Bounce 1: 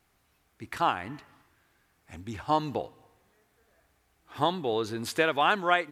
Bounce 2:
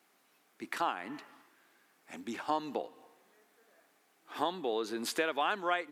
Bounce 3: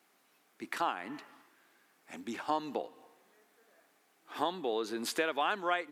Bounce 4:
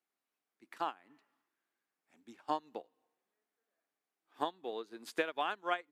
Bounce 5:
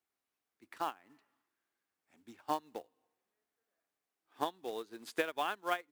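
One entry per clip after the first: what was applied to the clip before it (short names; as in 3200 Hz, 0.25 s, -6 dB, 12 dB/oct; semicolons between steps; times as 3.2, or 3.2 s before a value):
HPF 220 Hz 24 dB/oct; compressor 2:1, threshold -36 dBFS, peak gain reduction 10 dB; gain +1.5 dB
nothing audible
upward expander 2.5:1, over -42 dBFS
bell 94 Hz +13 dB 0.54 oct; short-mantissa float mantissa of 2-bit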